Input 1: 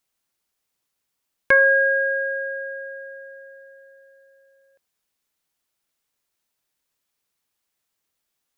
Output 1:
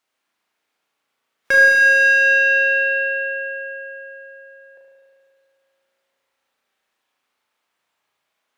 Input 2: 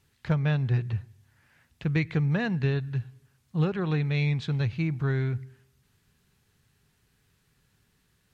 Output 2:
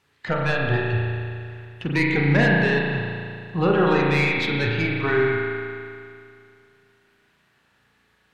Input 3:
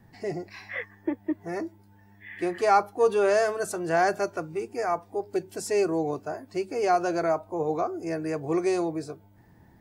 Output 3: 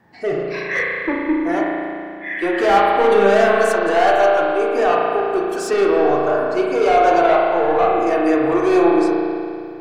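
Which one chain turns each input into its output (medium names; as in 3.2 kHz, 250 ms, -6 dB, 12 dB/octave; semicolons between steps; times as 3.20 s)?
overdrive pedal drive 28 dB, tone 1.9 kHz, clips at -5.5 dBFS; spectral noise reduction 9 dB; spring tank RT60 2.4 s, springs 35 ms, chirp 25 ms, DRR -2.5 dB; trim -3.5 dB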